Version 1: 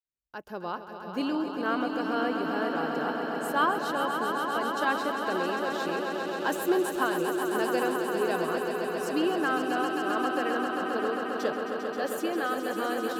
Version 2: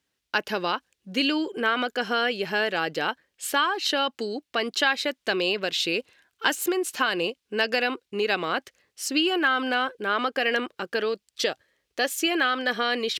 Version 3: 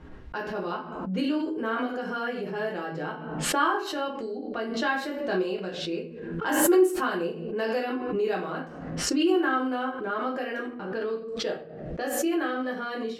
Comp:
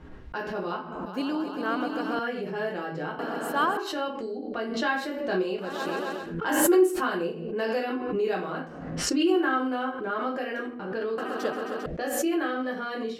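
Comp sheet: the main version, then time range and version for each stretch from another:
3
1.06–2.19 from 1
3.19–3.77 from 1
5.69–6.23 from 1, crossfade 0.24 s
11.18–11.86 from 1
not used: 2

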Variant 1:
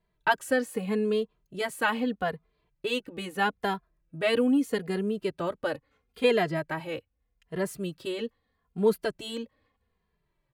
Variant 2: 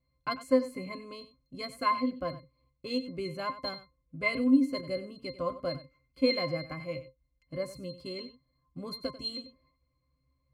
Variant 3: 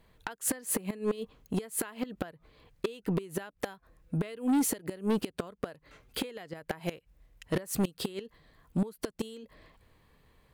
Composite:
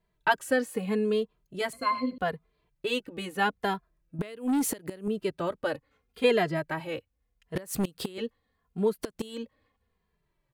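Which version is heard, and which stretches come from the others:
1
1.73–2.18 from 2
4.19–5.08 from 3
7.55–8.18 from 3
8.9–9.34 from 3, crossfade 0.16 s

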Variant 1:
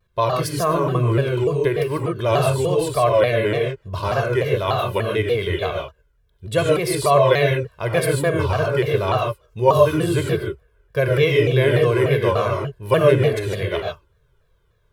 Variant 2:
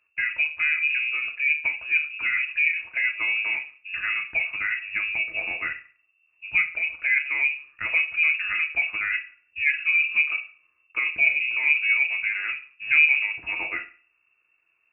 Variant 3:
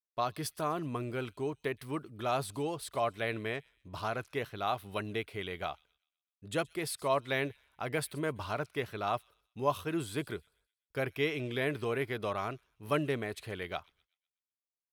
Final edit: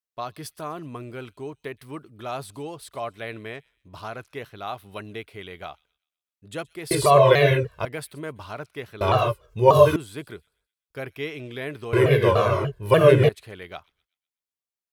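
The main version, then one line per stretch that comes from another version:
3
6.91–7.85 from 1
9.01–9.96 from 1
11.93–13.29 from 1
not used: 2

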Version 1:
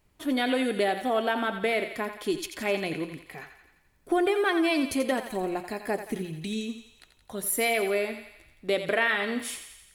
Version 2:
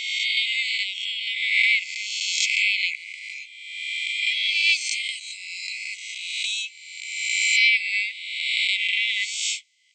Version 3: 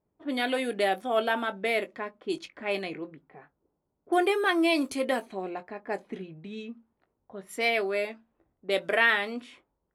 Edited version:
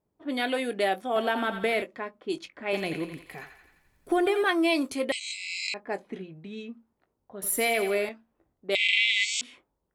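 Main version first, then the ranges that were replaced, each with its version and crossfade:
3
1.16–1.82 from 1
2.73–4.43 from 1
5.12–5.74 from 2
7.42–8.09 from 1
8.75–9.41 from 2

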